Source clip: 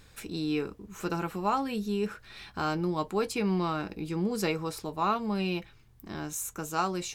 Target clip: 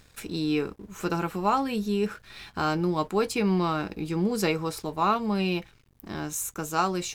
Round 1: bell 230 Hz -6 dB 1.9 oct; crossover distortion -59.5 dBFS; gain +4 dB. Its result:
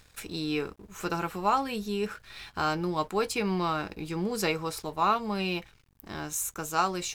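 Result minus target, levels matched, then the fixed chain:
250 Hz band -3.0 dB
crossover distortion -59.5 dBFS; gain +4 dB

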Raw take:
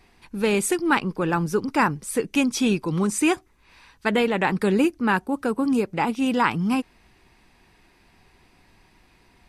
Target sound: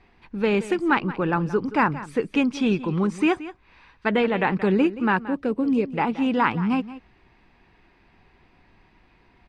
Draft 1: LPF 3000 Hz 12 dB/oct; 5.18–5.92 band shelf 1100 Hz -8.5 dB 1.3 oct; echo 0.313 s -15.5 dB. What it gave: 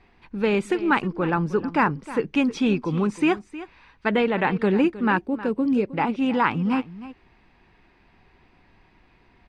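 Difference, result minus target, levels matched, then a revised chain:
echo 0.137 s late
LPF 3000 Hz 12 dB/oct; 5.18–5.92 band shelf 1100 Hz -8.5 dB 1.3 oct; echo 0.176 s -15.5 dB

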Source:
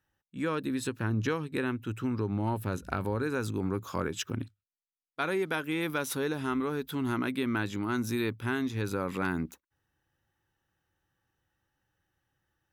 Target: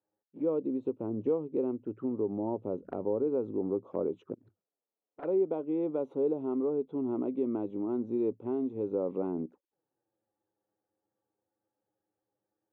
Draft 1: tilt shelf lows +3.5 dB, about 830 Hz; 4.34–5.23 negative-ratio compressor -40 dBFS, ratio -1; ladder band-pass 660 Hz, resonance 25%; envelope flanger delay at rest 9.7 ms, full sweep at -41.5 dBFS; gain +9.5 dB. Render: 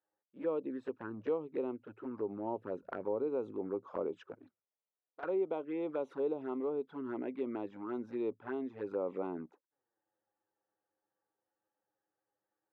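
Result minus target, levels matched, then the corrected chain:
1000 Hz band +5.5 dB
tilt shelf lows +13.5 dB, about 830 Hz; 4.34–5.23 negative-ratio compressor -40 dBFS, ratio -1; ladder band-pass 660 Hz, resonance 25%; envelope flanger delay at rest 9.7 ms, full sweep at -41.5 dBFS; gain +9.5 dB

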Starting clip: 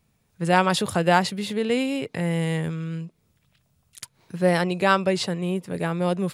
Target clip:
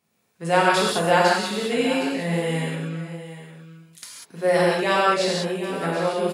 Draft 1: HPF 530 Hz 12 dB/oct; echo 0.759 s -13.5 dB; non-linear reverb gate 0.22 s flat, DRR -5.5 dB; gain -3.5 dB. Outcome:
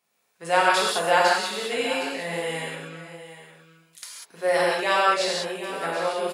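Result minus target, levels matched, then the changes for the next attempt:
250 Hz band -8.0 dB
change: HPF 230 Hz 12 dB/oct

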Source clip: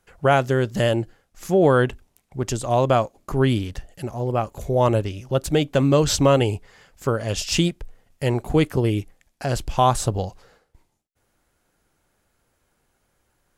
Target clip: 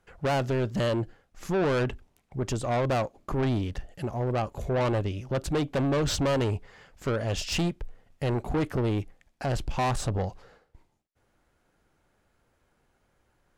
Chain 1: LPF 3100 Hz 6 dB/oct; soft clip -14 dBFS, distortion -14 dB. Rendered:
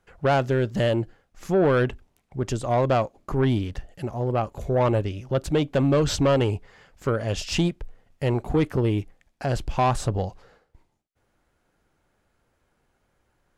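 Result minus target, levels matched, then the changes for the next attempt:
soft clip: distortion -7 dB
change: soft clip -22.5 dBFS, distortion -6 dB

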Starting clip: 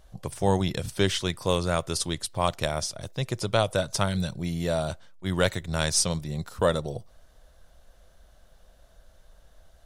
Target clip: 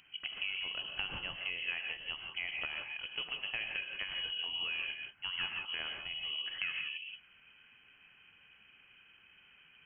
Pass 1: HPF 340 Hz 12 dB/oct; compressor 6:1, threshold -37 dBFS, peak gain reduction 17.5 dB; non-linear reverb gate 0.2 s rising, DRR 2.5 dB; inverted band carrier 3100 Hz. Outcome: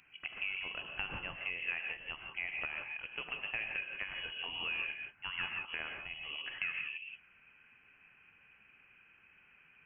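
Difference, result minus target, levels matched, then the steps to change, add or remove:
250 Hz band +3.0 dB
change: HPF 130 Hz 12 dB/oct

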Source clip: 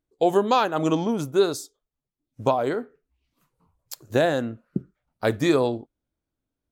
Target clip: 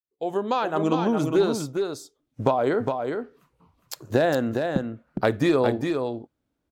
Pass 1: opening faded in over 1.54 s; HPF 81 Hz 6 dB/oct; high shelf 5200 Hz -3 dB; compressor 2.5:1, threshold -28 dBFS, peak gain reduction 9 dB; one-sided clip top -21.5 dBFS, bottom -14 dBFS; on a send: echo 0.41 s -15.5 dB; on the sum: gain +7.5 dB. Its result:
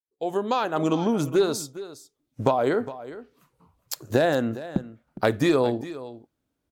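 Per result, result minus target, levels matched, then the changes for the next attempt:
echo-to-direct -10 dB; 8000 Hz band +4.0 dB
change: echo 0.41 s -5.5 dB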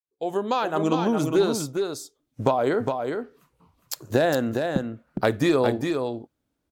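8000 Hz band +4.5 dB
change: high shelf 5200 Hz -10 dB

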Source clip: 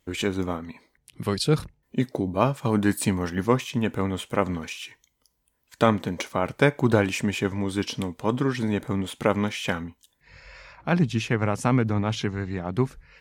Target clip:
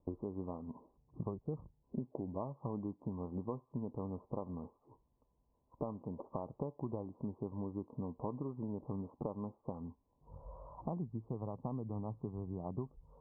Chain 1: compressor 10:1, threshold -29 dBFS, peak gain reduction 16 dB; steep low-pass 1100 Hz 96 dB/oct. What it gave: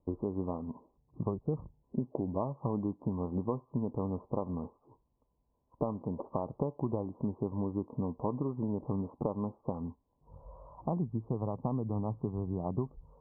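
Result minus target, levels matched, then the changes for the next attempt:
compressor: peak gain reduction -7 dB
change: compressor 10:1, threshold -37 dBFS, peak gain reduction 23.5 dB

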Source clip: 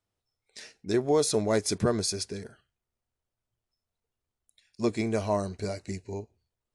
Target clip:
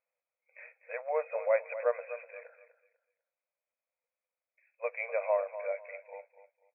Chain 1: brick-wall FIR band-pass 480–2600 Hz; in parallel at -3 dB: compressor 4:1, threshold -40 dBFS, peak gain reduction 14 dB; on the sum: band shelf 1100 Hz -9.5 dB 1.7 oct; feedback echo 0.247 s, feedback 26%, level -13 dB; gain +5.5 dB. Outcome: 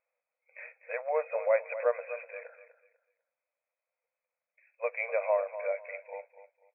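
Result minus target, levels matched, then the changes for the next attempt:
compressor: peak gain reduction +14 dB
remove: compressor 4:1, threshold -40 dBFS, peak gain reduction 14 dB

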